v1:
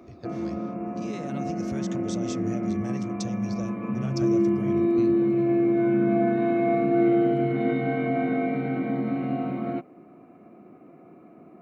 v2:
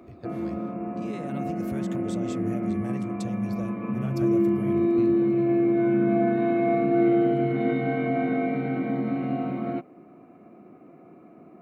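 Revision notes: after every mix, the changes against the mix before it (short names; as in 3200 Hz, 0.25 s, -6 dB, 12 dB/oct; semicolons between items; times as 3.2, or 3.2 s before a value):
speech: remove synth low-pass 5900 Hz, resonance Q 4.3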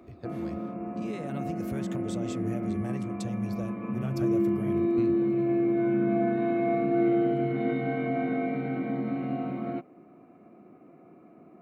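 background -3.5 dB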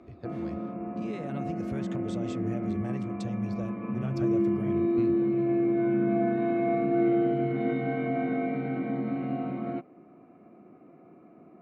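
master: add air absorption 79 m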